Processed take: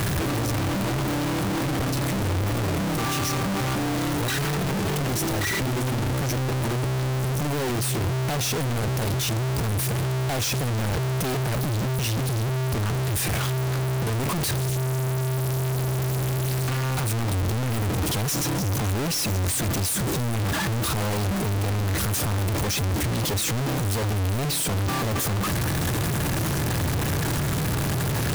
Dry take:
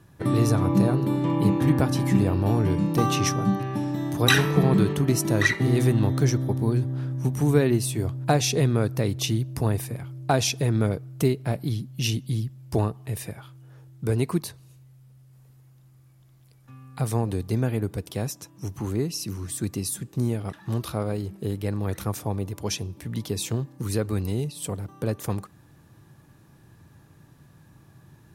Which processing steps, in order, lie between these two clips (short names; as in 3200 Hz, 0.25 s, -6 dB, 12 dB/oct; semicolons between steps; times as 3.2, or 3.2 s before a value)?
infinite clipping; bell 77 Hz +4 dB 0.84 oct